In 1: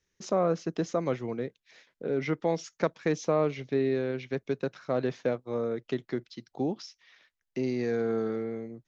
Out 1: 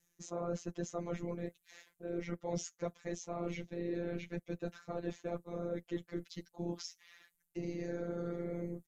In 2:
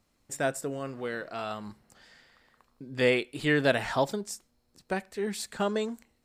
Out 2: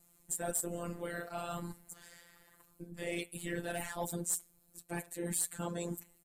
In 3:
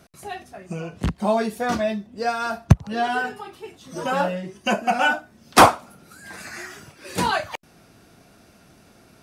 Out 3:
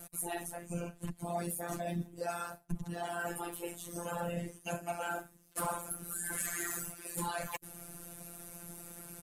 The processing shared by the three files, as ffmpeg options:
-af "equalizer=f=74:w=0.81:g=7,areverse,acompressor=threshold=-34dB:ratio=6,areverse,afftfilt=real='hypot(re,im)*cos(2*PI*random(0))':imag='hypot(re,im)*sin(2*PI*random(1))':win_size=512:overlap=0.75,aexciter=amount=8.9:drive=3.1:freq=7.3k,afftfilt=real='hypot(re,im)*cos(PI*b)':imag='0':win_size=1024:overlap=0.75,asoftclip=type=tanh:threshold=-30dB,aresample=32000,aresample=44100,volume=8dB"

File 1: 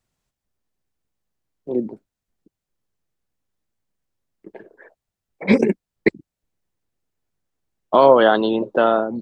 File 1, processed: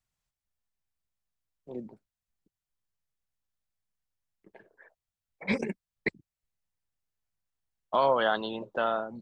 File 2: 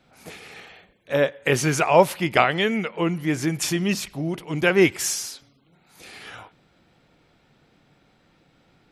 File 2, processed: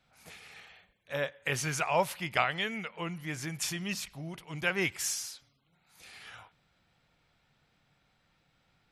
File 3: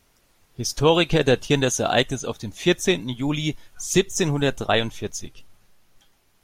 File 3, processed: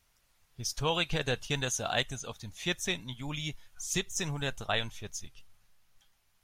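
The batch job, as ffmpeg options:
-af "equalizer=f=330:t=o:w=1.7:g=-11,volume=-7.5dB"

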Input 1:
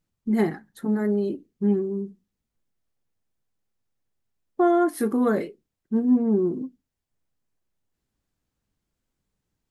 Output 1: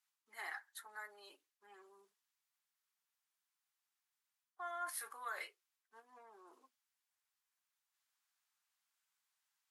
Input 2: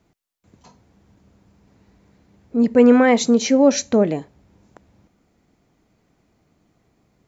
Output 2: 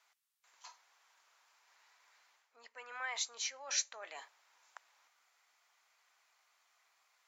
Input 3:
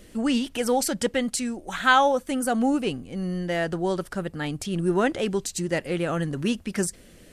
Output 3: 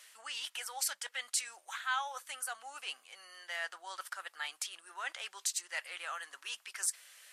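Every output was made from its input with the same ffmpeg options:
-af "areverse,acompressor=threshold=-28dB:ratio=8,areverse,highpass=f=1k:w=0.5412,highpass=f=1k:w=1.3066" -ar 48000 -c:a libvorbis -b:a 64k

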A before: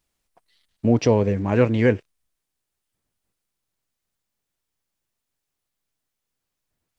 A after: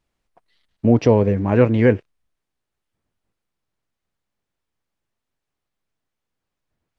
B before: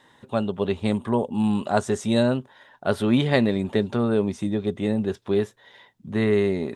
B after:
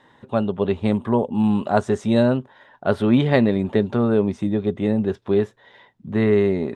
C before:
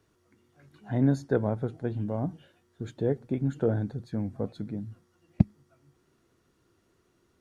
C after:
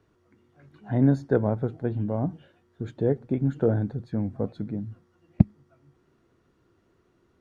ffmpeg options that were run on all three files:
-af "lowpass=f=2.1k:p=1,volume=3.5dB"

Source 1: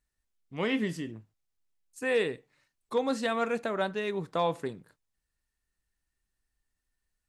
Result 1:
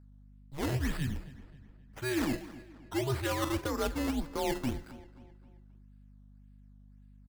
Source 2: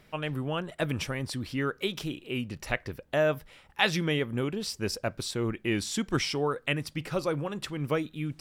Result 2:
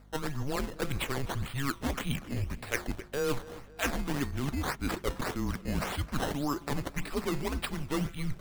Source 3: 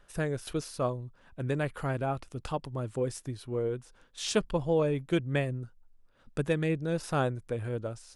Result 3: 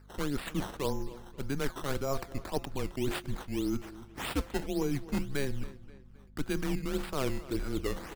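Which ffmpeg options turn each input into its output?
-filter_complex "[0:a]agate=range=-8dB:threshold=-57dB:ratio=16:detection=peak,highpass=95,bandreject=f=165.3:t=h:w=4,bandreject=f=330.6:t=h:w=4,bandreject=f=495.9:t=h:w=4,bandreject=f=661.2:t=h:w=4,bandreject=f=826.5:t=h:w=4,bandreject=f=991.8:t=h:w=4,bandreject=f=1.1571k:t=h:w=4,bandreject=f=1.3224k:t=h:w=4,bandreject=f=1.4877k:t=h:w=4,bandreject=f=1.653k:t=h:w=4,bandreject=f=1.8183k:t=h:w=4,bandreject=f=1.9836k:t=h:w=4,bandreject=f=2.1489k:t=h:w=4,bandreject=f=2.3142k:t=h:w=4,bandreject=f=2.4795k:t=h:w=4,bandreject=f=2.6448k:t=h:w=4,bandreject=f=2.8101k:t=h:w=4,areverse,acompressor=threshold=-37dB:ratio=6,areverse,afreqshift=-140,acrusher=samples=13:mix=1:aa=0.000001:lfo=1:lforange=13:lforate=1.8,aeval=exprs='val(0)+0.000794*(sin(2*PI*50*n/s)+sin(2*PI*2*50*n/s)/2+sin(2*PI*3*50*n/s)/3+sin(2*PI*4*50*n/s)/4+sin(2*PI*5*50*n/s)/5)':c=same,asplit=2[a][b];[b]adelay=265,lowpass=f=4.4k:p=1,volume=-17dB,asplit=2[c][d];[d]adelay=265,lowpass=f=4.4k:p=1,volume=0.46,asplit=2[e][f];[f]adelay=265,lowpass=f=4.4k:p=1,volume=0.46,asplit=2[g][h];[h]adelay=265,lowpass=f=4.4k:p=1,volume=0.46[i];[c][e][g][i]amix=inputs=4:normalize=0[j];[a][j]amix=inputs=2:normalize=0,volume=8dB"

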